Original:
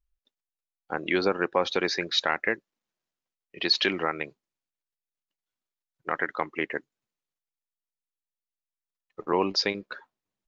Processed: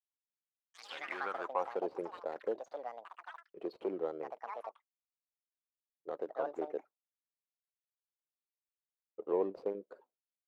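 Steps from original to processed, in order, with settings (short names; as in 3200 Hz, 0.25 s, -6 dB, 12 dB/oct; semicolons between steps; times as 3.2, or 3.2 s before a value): median filter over 25 samples; gate with hold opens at -59 dBFS; in parallel at -6 dB: overloaded stage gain 26.5 dB; on the sum: band-pass sweep 6200 Hz -> 490 Hz, 0.41–1.93; echoes that change speed 0.17 s, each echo +7 st, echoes 3, each echo -6 dB; gain -4.5 dB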